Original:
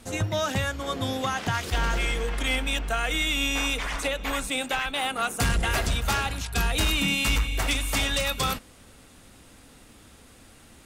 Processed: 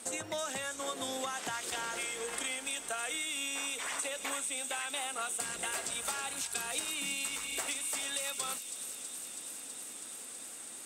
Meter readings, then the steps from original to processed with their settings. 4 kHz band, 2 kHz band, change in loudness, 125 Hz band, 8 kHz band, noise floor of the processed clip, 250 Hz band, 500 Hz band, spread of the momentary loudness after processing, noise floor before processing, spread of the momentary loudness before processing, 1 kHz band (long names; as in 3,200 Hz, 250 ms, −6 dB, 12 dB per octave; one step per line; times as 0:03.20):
−10.0 dB, −11.0 dB, −9.5 dB, −29.5 dB, 0.0 dB, −46 dBFS, −15.5 dB, −10.0 dB, 8 LU, −52 dBFS, 5 LU, −10.5 dB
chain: high-pass filter 330 Hz 12 dB per octave
parametric band 8,300 Hz +14 dB 0.44 octaves
downward compressor 10 to 1, threshold −34 dBFS, peak gain reduction 16.5 dB
on a send: delay with a high-pass on its return 325 ms, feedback 83%, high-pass 5,200 Hz, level −6 dB